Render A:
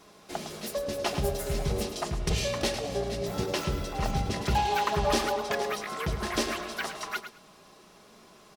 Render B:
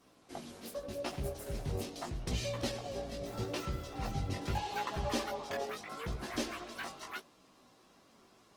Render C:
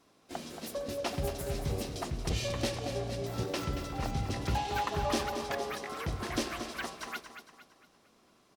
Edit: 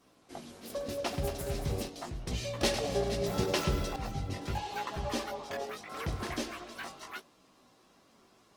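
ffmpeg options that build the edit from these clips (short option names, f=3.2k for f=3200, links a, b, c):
-filter_complex "[2:a]asplit=2[a][b];[1:a]asplit=4[c][d][e][f];[c]atrim=end=0.702[g];[a]atrim=start=0.698:end=1.882[h];[d]atrim=start=1.878:end=2.612[i];[0:a]atrim=start=2.608:end=3.962[j];[e]atrim=start=3.958:end=5.942[k];[b]atrim=start=5.938:end=6.342[l];[f]atrim=start=6.338[m];[g][h]acrossfade=d=0.004:c1=hsin:c2=hsin[n];[n][i]acrossfade=d=0.004:c1=hsin:c2=hsin[o];[o][j]acrossfade=d=0.004:c1=hsin:c2=hsin[p];[p][k]acrossfade=d=0.004:c1=hsin:c2=hsin[q];[q][l]acrossfade=d=0.004:c1=hsin:c2=hsin[r];[r][m]acrossfade=d=0.004:c1=hsin:c2=hsin"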